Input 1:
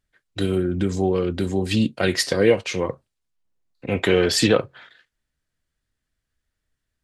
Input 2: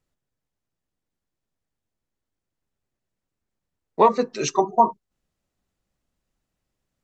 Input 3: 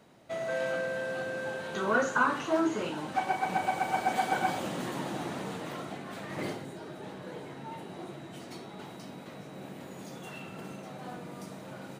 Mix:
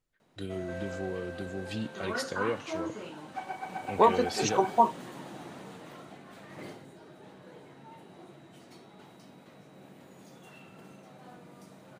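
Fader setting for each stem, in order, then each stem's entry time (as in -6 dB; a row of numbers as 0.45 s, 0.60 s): -15.5 dB, -5.5 dB, -8.5 dB; 0.00 s, 0.00 s, 0.20 s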